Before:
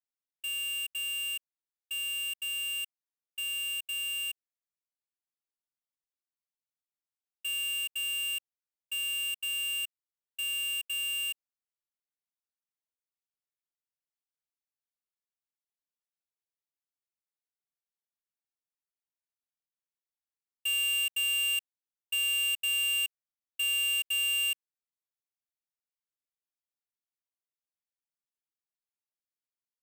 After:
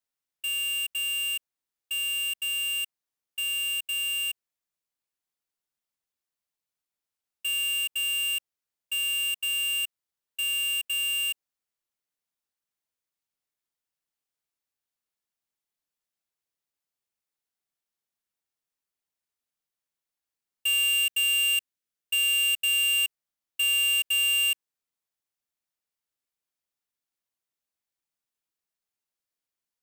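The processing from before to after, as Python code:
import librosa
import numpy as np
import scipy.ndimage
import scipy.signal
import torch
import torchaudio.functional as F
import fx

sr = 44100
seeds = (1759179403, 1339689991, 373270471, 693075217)

y = fx.peak_eq(x, sr, hz=890.0, db=-9.5, octaves=0.39, at=(20.89, 22.98))
y = F.gain(torch.from_numpy(y), 5.0).numpy()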